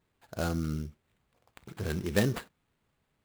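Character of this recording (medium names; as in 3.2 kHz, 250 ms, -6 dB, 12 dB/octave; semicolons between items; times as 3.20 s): aliases and images of a low sample rate 5.7 kHz, jitter 20%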